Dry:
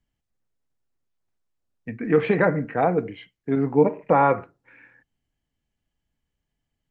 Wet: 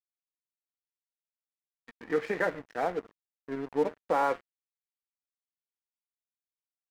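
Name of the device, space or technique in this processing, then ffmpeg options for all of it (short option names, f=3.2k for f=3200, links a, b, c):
pocket radio on a weak battery: -af "highpass=310,lowpass=3k,aeval=exprs='sgn(val(0))*max(abs(val(0))-0.02,0)':c=same,equalizer=f=1.8k:t=o:w=0.32:g=5,volume=-7.5dB"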